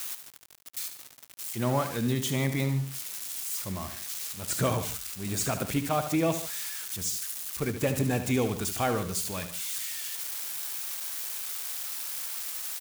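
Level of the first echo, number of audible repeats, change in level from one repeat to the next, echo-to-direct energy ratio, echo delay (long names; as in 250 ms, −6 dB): −10.0 dB, 2, −5.5 dB, −9.0 dB, 74 ms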